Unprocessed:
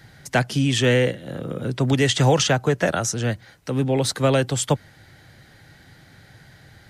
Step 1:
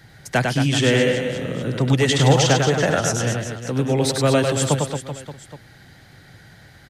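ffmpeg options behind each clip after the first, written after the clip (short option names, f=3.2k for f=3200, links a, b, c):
-af "aecho=1:1:100|225|381.2|576.6|820.7:0.631|0.398|0.251|0.158|0.1"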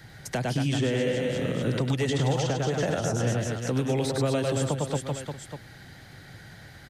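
-filter_complex "[0:a]acrossover=split=950|2300[a][b][c];[a]acompressor=threshold=-21dB:ratio=4[d];[b]acompressor=threshold=-41dB:ratio=4[e];[c]acompressor=threshold=-36dB:ratio=4[f];[d][e][f]amix=inputs=3:normalize=0,alimiter=limit=-16dB:level=0:latency=1:release=259"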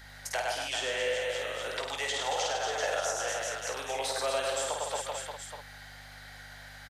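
-filter_complex "[0:a]highpass=f=610:w=0.5412,highpass=f=610:w=1.3066,aeval=exprs='val(0)+0.00224*(sin(2*PI*50*n/s)+sin(2*PI*2*50*n/s)/2+sin(2*PI*3*50*n/s)/3+sin(2*PI*4*50*n/s)/4+sin(2*PI*5*50*n/s)/5)':c=same,asplit=2[a][b];[b]aecho=0:1:18|52:0.355|0.596[c];[a][c]amix=inputs=2:normalize=0"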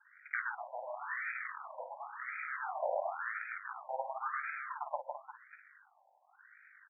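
-af "aeval=exprs='0.112*(cos(1*acos(clip(val(0)/0.112,-1,1)))-cos(1*PI/2))+0.00501*(cos(3*acos(clip(val(0)/0.112,-1,1)))-cos(3*PI/2))+0.01*(cos(7*acos(clip(val(0)/0.112,-1,1)))-cos(7*PI/2))+0.00891*(cos(8*acos(clip(val(0)/0.112,-1,1)))-cos(8*PI/2))':c=same,asubboost=boost=11:cutoff=120,afftfilt=real='re*between(b*sr/1024,710*pow(1800/710,0.5+0.5*sin(2*PI*0.94*pts/sr))/1.41,710*pow(1800/710,0.5+0.5*sin(2*PI*0.94*pts/sr))*1.41)':imag='im*between(b*sr/1024,710*pow(1800/710,0.5+0.5*sin(2*PI*0.94*pts/sr))/1.41,710*pow(1800/710,0.5+0.5*sin(2*PI*0.94*pts/sr))*1.41)':win_size=1024:overlap=0.75,volume=2.5dB"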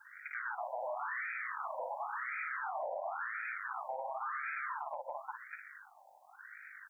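-af "bass=f=250:g=7,treble=f=4k:g=8,acompressor=threshold=-39dB:ratio=10,alimiter=level_in=15.5dB:limit=-24dB:level=0:latency=1:release=12,volume=-15.5dB,volume=8dB"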